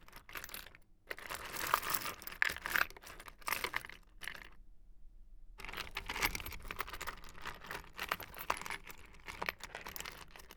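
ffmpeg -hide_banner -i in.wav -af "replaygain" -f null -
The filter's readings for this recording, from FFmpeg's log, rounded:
track_gain = +19.7 dB
track_peak = 0.182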